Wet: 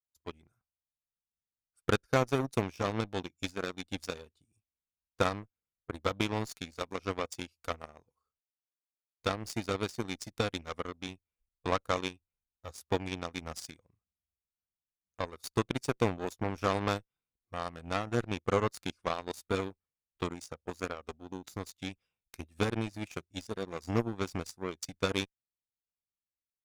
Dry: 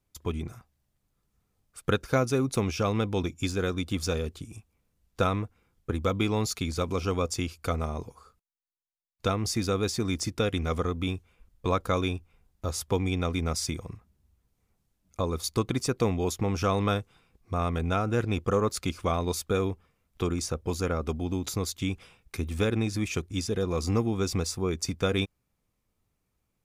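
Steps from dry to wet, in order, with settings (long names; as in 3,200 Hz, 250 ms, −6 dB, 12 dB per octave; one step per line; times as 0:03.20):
noise reduction from a noise print of the clip's start 7 dB
harmonic generator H 3 −35 dB, 7 −18 dB, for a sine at −11 dBFS
level −1.5 dB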